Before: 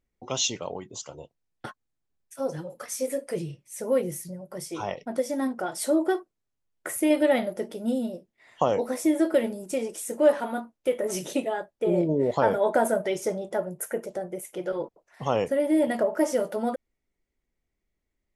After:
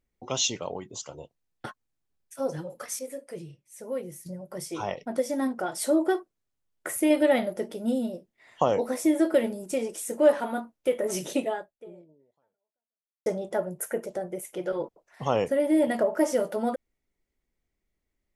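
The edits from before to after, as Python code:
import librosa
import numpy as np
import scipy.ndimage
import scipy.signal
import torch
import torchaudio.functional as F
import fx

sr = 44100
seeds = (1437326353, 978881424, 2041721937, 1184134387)

y = fx.edit(x, sr, fx.clip_gain(start_s=2.99, length_s=1.27, db=-8.5),
    fx.fade_out_span(start_s=11.51, length_s=1.75, curve='exp'), tone=tone)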